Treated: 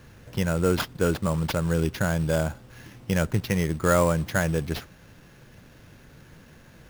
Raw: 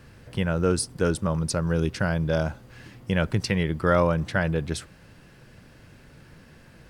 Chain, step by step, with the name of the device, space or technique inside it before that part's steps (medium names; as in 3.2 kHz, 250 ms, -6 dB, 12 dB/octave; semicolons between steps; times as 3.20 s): 3.17–3.85 s: distance through air 160 m; early companding sampler (sample-rate reducer 8.3 kHz, jitter 0%; companded quantiser 6-bit)